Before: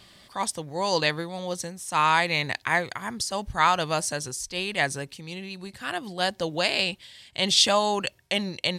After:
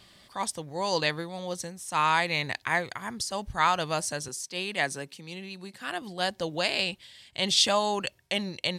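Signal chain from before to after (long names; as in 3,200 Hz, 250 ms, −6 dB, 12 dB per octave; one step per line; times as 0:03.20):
0:04.28–0:06.02: high-pass filter 150 Hz 24 dB per octave
level −3 dB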